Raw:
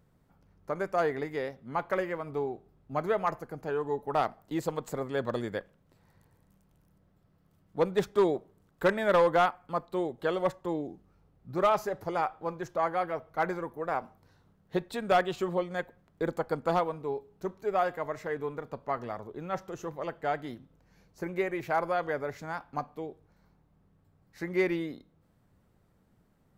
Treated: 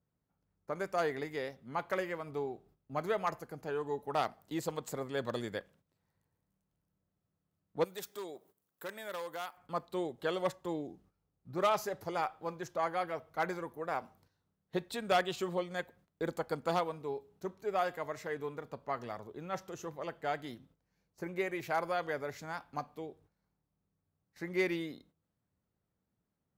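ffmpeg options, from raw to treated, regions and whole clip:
-filter_complex "[0:a]asettb=1/sr,asplit=3[a][b][c];[a]atrim=end=7.844[d];[b]atrim=start=7.84:end=9.57,asetpts=PTS-STARTPTS,afade=t=in:d=0.004:c=qsin,afade=t=out:st=1.726:d=0.004:c=qsin,aemphasis=mode=production:type=bsi,acompressor=threshold=-55dB:ratio=1.5:attack=3.2:release=140:knee=1:detection=peak[e];[c]atrim=start=9.566[f];[d][e]acrossfade=d=0.004:c1=hsin:c2=qsin[g];[g][f]acrossfade=d=0.004:c1=qsin:c2=hsin,agate=range=-12dB:threshold=-58dB:ratio=16:detection=peak,highpass=45,adynamicequalizer=threshold=0.00562:dfrequency=2300:dqfactor=0.7:tfrequency=2300:tqfactor=0.7:attack=5:release=100:ratio=0.375:range=4:mode=boostabove:tftype=highshelf,volume=-5dB"

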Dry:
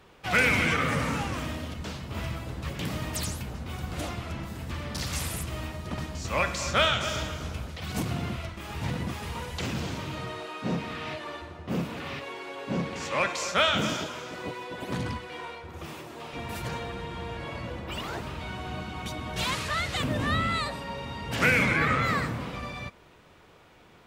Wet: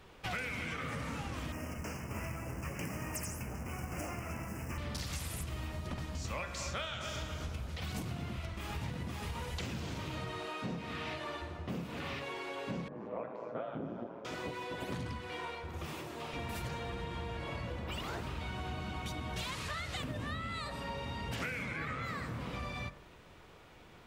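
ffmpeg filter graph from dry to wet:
-filter_complex "[0:a]asettb=1/sr,asplit=3[a][b][c];[a]atrim=end=1.524[d];[b]atrim=start=1.52:end=4.78,asetpts=PTS-STARTPTS,afade=t=in:d=0.004:c=qsin,afade=t=out:st=3.256:d=0.004:c=qsin,lowshelf=f=87:g=-11,acrusher=bits=3:mode=log:mix=0:aa=0.000001,asuperstop=centerf=3800:order=8:qfactor=1.7[e];[c]atrim=start=4.776[f];[d][e]acrossfade=d=0.004:c1=hsin:c2=qsin[g];[g][f]acrossfade=d=0.004:c1=qsin:c2=hsin,asettb=1/sr,asplit=3[h][i][j];[h]atrim=end=12.884[k];[i]atrim=start=12.88:end=14.25,asetpts=PTS-STARTPTS,afade=t=in:d=0.004:c=qsin,afade=t=out:st=1.366:d=0.004:c=qsin,aeval=exprs='val(0)*sin(2*PI*57*n/s)':c=same,asuperpass=centerf=340:order=4:qfactor=0.55[l];[j]atrim=start=14.246[m];[k][l]acrossfade=d=0.004:c1=hsin:c2=qsin[n];[n][m]acrossfade=d=0.004:c1=qsin:c2=hsin,lowshelf=f=63:g=7.5,bandreject=f=47.69:t=h:w=4,bandreject=f=95.38:t=h:w=4,bandreject=f=143.07:t=h:w=4,bandreject=f=190.76:t=h:w=4,bandreject=f=238.45:t=h:w=4,bandreject=f=286.14:t=h:w=4,bandreject=f=333.83:t=h:w=4,bandreject=f=381.52:t=h:w=4,bandreject=f=429.21:t=h:w=4,bandreject=f=476.9:t=h:w=4,bandreject=f=524.59:t=h:w=4,bandreject=f=572.28:t=h:w=4,bandreject=f=619.97:t=h:w=4,bandreject=f=667.66:t=h:w=4,bandreject=f=715.35:t=h:w=4,bandreject=f=763.04:t=h:w=4,bandreject=f=810.73:t=h:w=4,bandreject=f=858.42:t=h:w=4,bandreject=f=906.11:t=h:w=4,bandreject=f=953.8:t=h:w=4,bandreject=f=1.00149k:t=h:w=4,bandreject=f=1.04918k:t=h:w=4,bandreject=f=1.09687k:t=h:w=4,bandreject=f=1.14456k:t=h:w=4,bandreject=f=1.19225k:t=h:w=4,bandreject=f=1.23994k:t=h:w=4,bandreject=f=1.28763k:t=h:w=4,bandreject=f=1.33532k:t=h:w=4,bandreject=f=1.38301k:t=h:w=4,bandreject=f=1.4307k:t=h:w=4,bandreject=f=1.47839k:t=h:w=4,bandreject=f=1.52608k:t=h:w=4,bandreject=f=1.57377k:t=h:w=4,bandreject=f=1.62146k:t=h:w=4,bandreject=f=1.66915k:t=h:w=4,bandreject=f=1.71684k:t=h:w=4,bandreject=f=1.76453k:t=h:w=4,bandreject=f=1.81222k:t=h:w=4,acompressor=threshold=-34dB:ratio=12,volume=-1.5dB"

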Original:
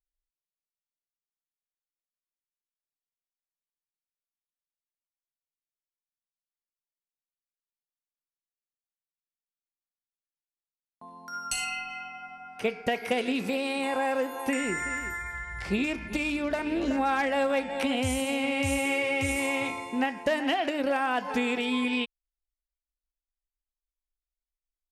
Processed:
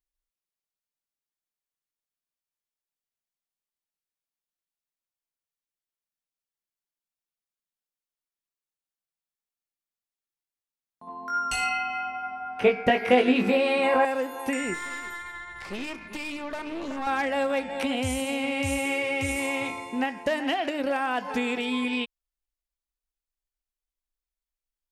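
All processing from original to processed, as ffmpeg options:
-filter_complex "[0:a]asettb=1/sr,asplit=3[a][b][c];[a]atrim=end=11.074[d];[b]atrim=start=11.07:end=14.05,asetpts=PTS-STARTPTS,afade=t=in:d=0.004:c=qsin,afade=t=out:st=2.976:d=0.004:c=qsin,acontrast=66,bass=f=250:g=-1,treble=f=4k:g=-13,asplit=2[e][f];[f]adelay=20,volume=-4dB[g];[e][g]amix=inputs=2:normalize=0,atrim=end_sample=131418[h];[c]atrim=start=14.046[i];[d][h]acrossfade=d=0.004:c1=hsin:c2=qsin[j];[j][i]acrossfade=d=0.004:c1=qsin:c2=hsin,asettb=1/sr,asplit=3[k][l][m];[k]atrim=end=14.744[n];[l]atrim=start=14.74:end=17.07,asetpts=PTS-STARTPTS,afade=t=in:d=0.004:c=qsin,afade=t=out:st=2.326:d=0.004:c=qsin,highpass=f=270:p=1,aeval=exprs='(tanh(28.2*val(0)+0.55)-tanh(0.55))/28.2':c=same,equalizer=f=1.1k:w=4.7:g=8[o];[m]atrim=start=17.066[p];[n][o]acrossfade=d=0.004:c1=hsin:c2=qsin[q];[q][p]acrossfade=d=0.004:c1=qsin:c2=hsin"

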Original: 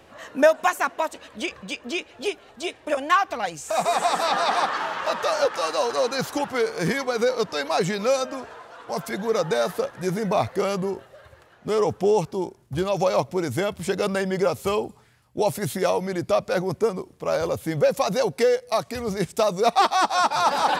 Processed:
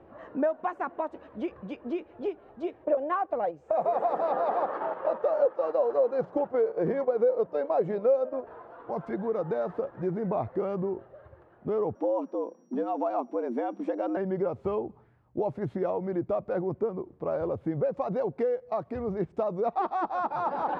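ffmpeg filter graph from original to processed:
-filter_complex "[0:a]asettb=1/sr,asplit=3[a][b][c];[a]atrim=end=2.844[d];[b]atrim=start=2.84:end=8.47,asetpts=PTS-STARTPTS,afade=t=in:d=0.004:c=qsin,afade=t=out:st=5.626:d=0.004:c=qsin,equalizer=f=540:w=1.7:g=11.5,bandreject=f=60:t=h:w=6,bandreject=f=120:t=h:w=6,bandreject=f=180:t=h:w=6,agate=range=-7dB:threshold=-26dB:ratio=16:release=100:detection=peak[e];[c]atrim=start=8.466[f];[d][e]acrossfade=d=0.004:c1=hsin:c2=qsin[g];[g][f]acrossfade=d=0.004:c1=qsin:c2=hsin,asettb=1/sr,asplit=3[h][i][j];[h]atrim=end=11.954[k];[i]atrim=start=11.95:end=14.17,asetpts=PTS-STARTPTS,afade=t=in:d=0.004:c=qsin,afade=t=out:st=2.216:d=0.004:c=qsin,aeval=exprs='val(0)+0.00794*sin(2*PI*5600*n/s)':c=same,afreqshift=120[l];[j]atrim=start=14.166[m];[k][l]acrossfade=d=0.004:c1=hsin:c2=qsin[n];[n][m]acrossfade=d=0.004:c1=qsin:c2=hsin,lowpass=1k,equalizer=f=340:t=o:w=0.28:g=5.5,acompressor=threshold=-28dB:ratio=2,volume=-1.5dB"

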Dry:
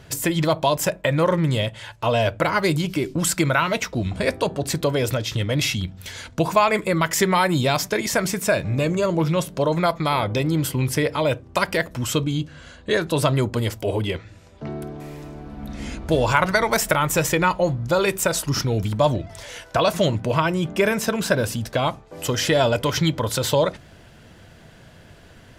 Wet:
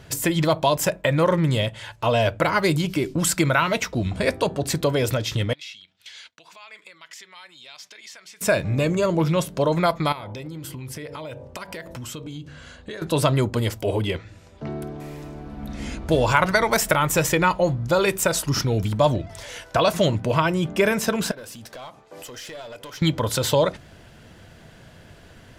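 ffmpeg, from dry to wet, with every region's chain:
-filter_complex "[0:a]asettb=1/sr,asplit=3[a][b][c];[a]atrim=end=5.534[d];[b]atrim=start=5.53:end=8.41,asetpts=PTS-STARTPTS,afade=t=in:d=0.004:c=qsin,afade=t=out:st=2.876:d=0.004:c=qsin,agate=range=-33dB:threshold=-35dB:ratio=3:release=100:detection=peak,acompressor=threshold=-34dB:ratio=4:attack=3.2:release=140:knee=1:detection=peak,bandpass=f=3.4k:t=q:w=1.2[e];[c]atrim=start=8.406[f];[d][e]acrossfade=d=0.004:c1=hsin:c2=qsin[g];[g][f]acrossfade=d=0.004:c1=qsin:c2=hsin,asettb=1/sr,asplit=3[h][i][j];[h]atrim=end=10.124[k];[i]atrim=start=10.12:end=13.02,asetpts=PTS-STARTPTS,afade=t=in:d=0.004:c=qsin,afade=t=out:st=2.896:d=0.004:c=qsin,bandreject=f=47:t=h:w=4,bandreject=f=94:t=h:w=4,bandreject=f=141:t=h:w=4,bandreject=f=188:t=h:w=4,bandreject=f=235:t=h:w=4,bandreject=f=282:t=h:w=4,bandreject=f=329:t=h:w=4,bandreject=f=376:t=h:w=4,bandreject=f=423:t=h:w=4,bandreject=f=470:t=h:w=4,bandreject=f=517:t=h:w=4,bandreject=f=564:t=h:w=4,bandreject=f=611:t=h:w=4,bandreject=f=658:t=h:w=4,bandreject=f=705:t=h:w=4,bandreject=f=752:t=h:w=4,bandreject=f=799:t=h:w=4,bandreject=f=846:t=h:w=4,bandreject=f=893:t=h:w=4,bandreject=f=940:t=h:w=4,bandreject=f=987:t=h:w=4,acompressor=threshold=-31dB:ratio=10:attack=3.2:release=140:knee=1:detection=peak[l];[j]atrim=start=13.016[m];[k][l]acrossfade=d=0.004:c1=hsin:c2=qsin[n];[n][m]acrossfade=d=0.004:c1=qsin:c2=hsin,asettb=1/sr,asplit=3[o][p][q];[o]atrim=end=21.314[r];[p]atrim=start=21.31:end=23.02,asetpts=PTS-STARTPTS,afade=t=in:d=0.004:c=qsin,afade=t=out:st=1.706:d=0.004:c=qsin,highpass=f=410:p=1,acompressor=threshold=-36dB:ratio=4:attack=3.2:release=140:knee=1:detection=peak,aeval=exprs='clip(val(0),-1,0.0178)':c=same[s];[q]atrim=start=23.016[t];[r][s]acrossfade=d=0.004:c1=hsin:c2=qsin[u];[u][t]acrossfade=d=0.004:c1=qsin:c2=hsin"

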